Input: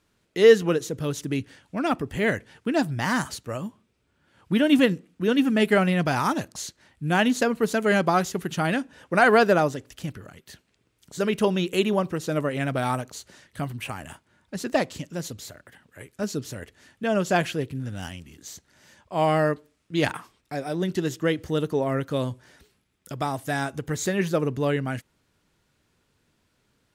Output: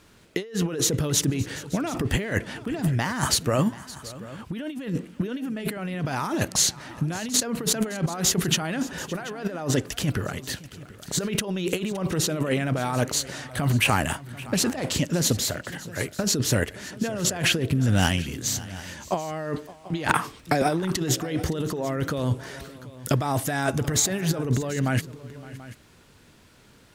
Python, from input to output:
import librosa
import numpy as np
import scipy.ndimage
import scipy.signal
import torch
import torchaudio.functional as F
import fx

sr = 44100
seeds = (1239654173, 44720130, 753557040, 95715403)

y = fx.over_compress(x, sr, threshold_db=-33.0, ratio=-1.0)
y = fx.echo_multitap(y, sr, ms=(566, 735), db=(-19.0, -18.0))
y = fx.band_squash(y, sr, depth_pct=70, at=(20.07, 20.62))
y = F.gain(torch.from_numpy(y), 6.5).numpy()